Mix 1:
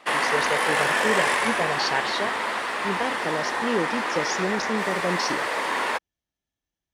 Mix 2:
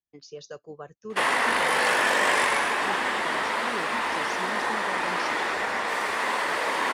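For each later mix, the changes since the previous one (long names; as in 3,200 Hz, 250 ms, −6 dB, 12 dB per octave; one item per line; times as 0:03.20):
speech −12.0 dB
background: entry +1.10 s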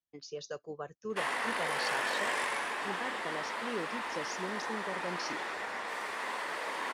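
background −10.5 dB
master: add low-shelf EQ 210 Hz −3.5 dB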